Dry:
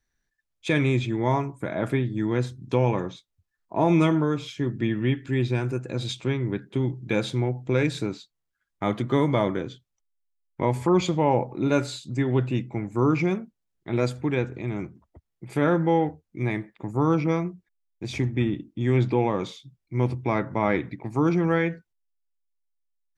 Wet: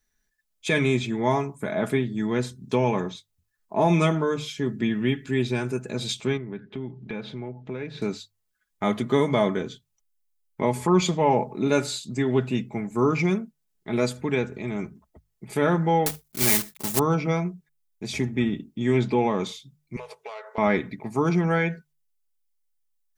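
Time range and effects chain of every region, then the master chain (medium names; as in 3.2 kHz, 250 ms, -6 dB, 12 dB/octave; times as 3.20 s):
6.37–8.02 s: distance through air 300 m + compression 2:1, threshold -36 dBFS + tape noise reduction on one side only encoder only
16.06–17.01 s: block-companded coder 3-bit + treble shelf 5 kHz +12 dB
19.96–20.58 s: self-modulated delay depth 0.15 ms + brick-wall FIR high-pass 410 Hz + compression 8:1, threshold -35 dBFS
whole clip: treble shelf 5.9 kHz +9.5 dB; hum notches 50/100/150 Hz; comb 4.7 ms, depth 55%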